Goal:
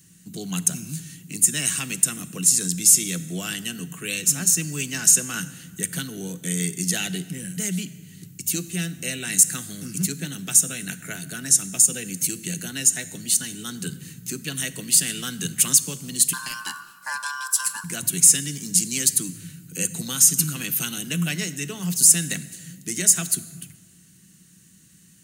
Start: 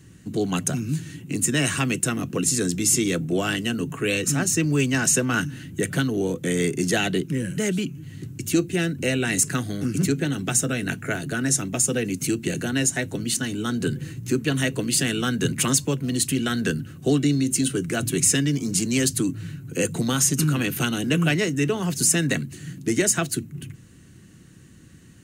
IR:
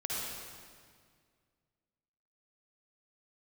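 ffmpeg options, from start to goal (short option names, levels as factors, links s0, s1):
-filter_complex "[0:a]asettb=1/sr,asplit=3[s0][s1][s2];[s0]atrim=end=16.334[s3];[s1]atrim=start=16.33:end=17.84,asetpts=PTS-STARTPTS,afade=t=in:d=0.004:c=qsin,afade=t=out:st=1.506:d=0.004:c=qsin,aeval=exprs='val(0)*sin(2*PI*1300*n/s)':c=same[s4];[s2]atrim=start=17.836[s5];[s3][s4]acrossfade=d=0.004:c1=hsin:c2=qsin[s6];[s6][s5]acrossfade=d=0.004:c1=qsin:c2=hsin,equalizer=f=180:t=o:w=0.44:g=14.5,asplit=2[s7][s8];[1:a]atrim=start_sample=2205,asetrate=61740,aresample=44100[s9];[s8][s9]afir=irnorm=-1:irlink=0,volume=0.168[s10];[s7][s10]amix=inputs=2:normalize=0,crystalizer=i=9.5:c=0,volume=0.168"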